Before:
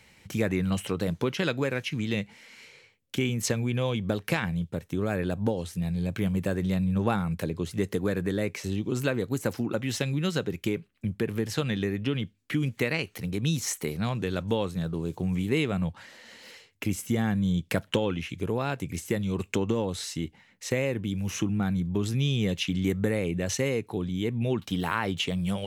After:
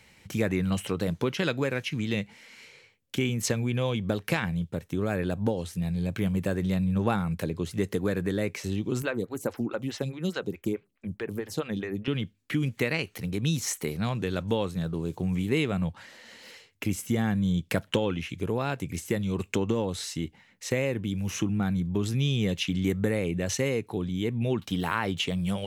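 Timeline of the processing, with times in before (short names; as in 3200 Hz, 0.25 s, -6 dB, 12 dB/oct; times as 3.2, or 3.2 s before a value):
9.02–12.08 photocell phaser 4.7 Hz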